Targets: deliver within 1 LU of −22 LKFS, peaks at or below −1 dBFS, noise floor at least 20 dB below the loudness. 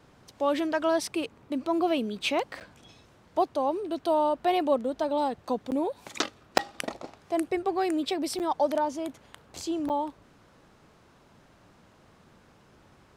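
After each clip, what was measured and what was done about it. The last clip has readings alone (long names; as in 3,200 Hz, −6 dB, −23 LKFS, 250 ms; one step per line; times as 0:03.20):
number of dropouts 5; longest dropout 8.7 ms; integrated loudness −29.0 LKFS; sample peak −8.5 dBFS; target loudness −22.0 LKFS
→ repair the gap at 0:02.60/0:05.71/0:06.58/0:08.39/0:09.89, 8.7 ms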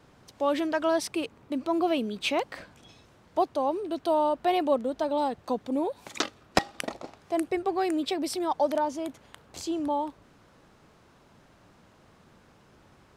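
number of dropouts 0; integrated loudness −29.0 LKFS; sample peak −8.5 dBFS; target loudness −22.0 LKFS
→ level +7 dB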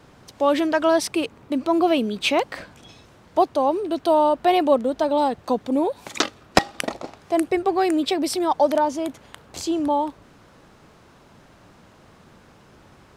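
integrated loudness −22.0 LKFS; sample peak −1.5 dBFS; background noise floor −52 dBFS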